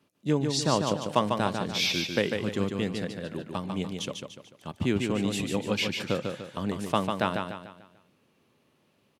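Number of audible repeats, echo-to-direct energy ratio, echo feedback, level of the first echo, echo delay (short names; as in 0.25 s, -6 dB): 4, -4.0 dB, 41%, -5.0 dB, 0.147 s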